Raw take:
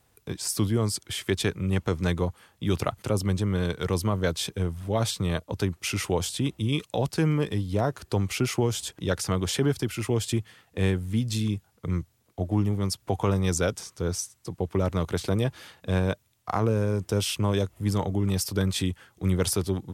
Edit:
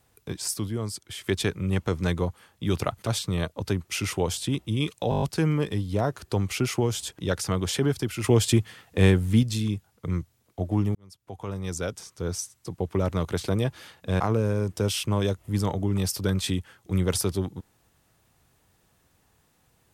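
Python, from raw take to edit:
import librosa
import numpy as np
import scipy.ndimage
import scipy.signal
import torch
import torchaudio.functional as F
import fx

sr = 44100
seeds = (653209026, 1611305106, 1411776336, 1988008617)

y = fx.edit(x, sr, fx.clip_gain(start_s=0.54, length_s=0.7, db=-5.5),
    fx.cut(start_s=3.07, length_s=1.92),
    fx.stutter(start_s=7.02, slice_s=0.02, count=7),
    fx.clip_gain(start_s=10.04, length_s=1.19, db=6.0),
    fx.fade_in_span(start_s=12.75, length_s=1.62),
    fx.cut(start_s=16.0, length_s=0.52), tone=tone)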